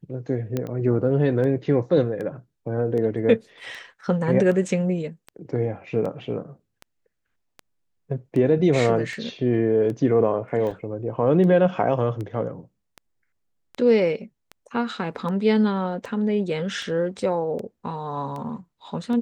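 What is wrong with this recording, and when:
scratch tick 78 rpm −22 dBFS
0:00.57: click −13 dBFS
0:10.71: drop-out 4.5 ms

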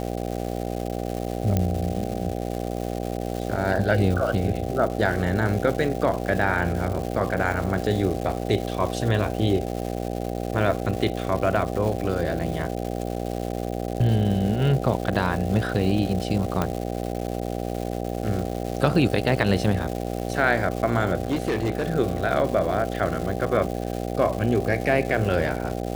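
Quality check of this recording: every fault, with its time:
mains buzz 60 Hz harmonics 13 −29 dBFS
surface crackle 410 per second −30 dBFS
0:01.57: click −9 dBFS
0:16.62: click −10 dBFS
0:21.23–0:21.87: clipping −19.5 dBFS

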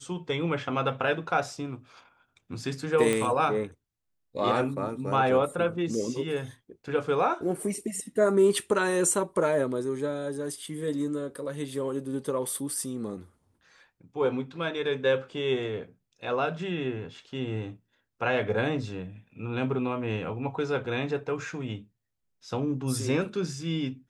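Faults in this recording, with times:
0:03.13: click −13 dBFS

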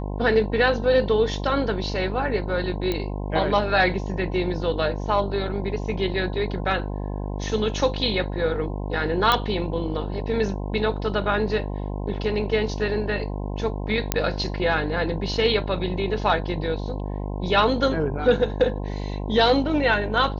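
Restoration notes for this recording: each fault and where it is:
mains buzz 50 Hz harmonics 21 −29 dBFS
0:02.92: click −12 dBFS
0:09.32: click −6 dBFS
0:14.12: click −3 dBFS

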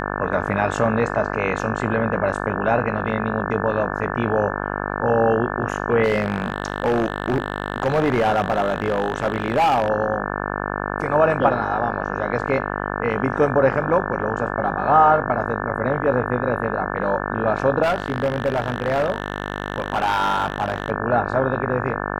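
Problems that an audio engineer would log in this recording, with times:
mains buzz 50 Hz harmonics 35 −26 dBFS
0:06.03–0:09.90: clipping −14 dBFS
0:17.82–0:20.90: clipping −15.5 dBFS

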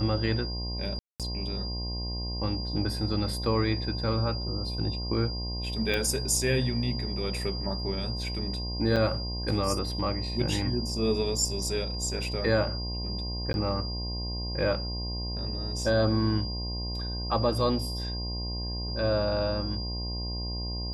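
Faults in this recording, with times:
mains buzz 60 Hz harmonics 18 −34 dBFS
whistle 4,800 Hz −36 dBFS
0:00.99–0:01.20: drop-out 207 ms
0:05.94: click −15 dBFS
0:08.96–0:08.97: drop-out 6.2 ms
0:13.53–0:13.54: drop-out 11 ms

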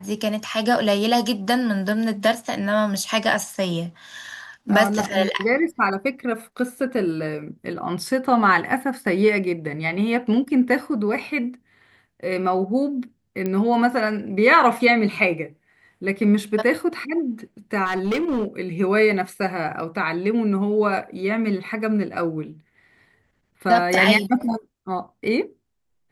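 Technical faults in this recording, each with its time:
0:13.46: click −13 dBFS
0:17.85–0:18.45: clipping −19 dBFS

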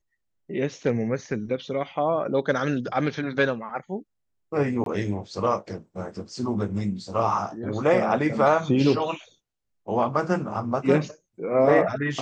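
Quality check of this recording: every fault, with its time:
0:04.84–0:04.86: drop-out 22 ms

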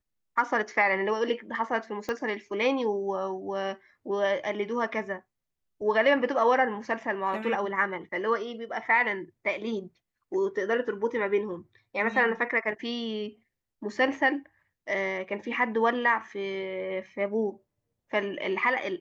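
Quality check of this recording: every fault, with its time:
0:02.09: click −18 dBFS

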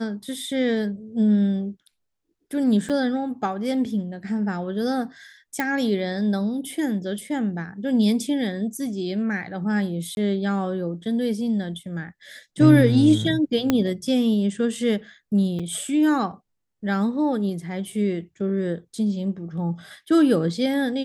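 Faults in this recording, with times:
0:02.89–0:02.90: drop-out 7.6 ms
0:05.60: click
0:10.15–0:10.17: drop-out 21 ms
0:13.70: click −6 dBFS
0:15.59–0:15.60: drop-out 5.9 ms

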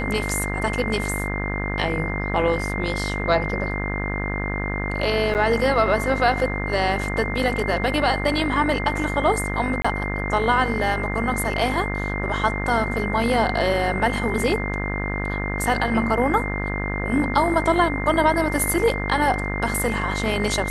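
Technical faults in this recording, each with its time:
mains buzz 50 Hz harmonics 39 −27 dBFS
whistle 2,100 Hz −29 dBFS
0:05.34–0:05.35: drop-out 8.6 ms
0:09.82–0:09.85: drop-out 25 ms

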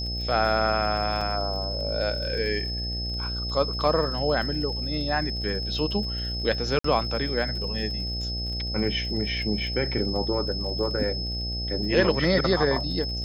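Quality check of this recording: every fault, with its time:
mains buzz 60 Hz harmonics 13 −32 dBFS
surface crackle 43 per second −35 dBFS
whistle 5,200 Hz −31 dBFS
0:01.21: drop-out 4.6 ms
0:06.79–0:06.84: drop-out 54 ms

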